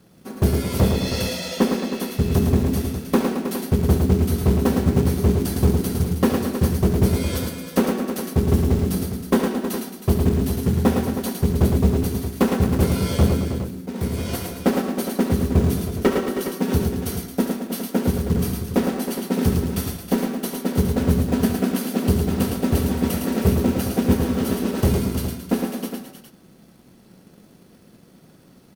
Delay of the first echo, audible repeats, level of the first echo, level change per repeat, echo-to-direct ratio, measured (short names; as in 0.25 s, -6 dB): 70 ms, 5, -12.0 dB, no steady repeat, -2.0 dB